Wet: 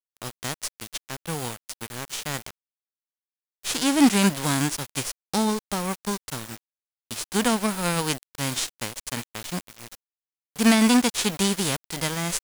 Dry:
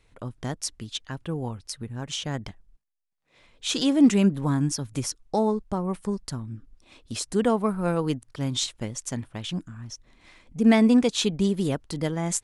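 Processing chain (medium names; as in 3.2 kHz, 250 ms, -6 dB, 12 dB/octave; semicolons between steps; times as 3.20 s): formants flattened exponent 0.3; small samples zeroed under -32.5 dBFS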